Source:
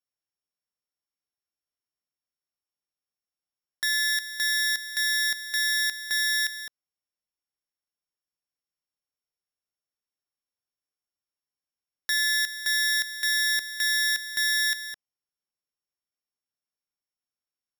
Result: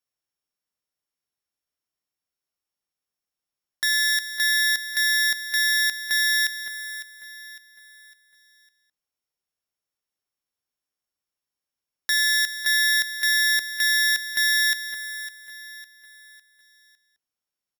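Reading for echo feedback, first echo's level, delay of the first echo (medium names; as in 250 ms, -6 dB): 40%, -13.0 dB, 555 ms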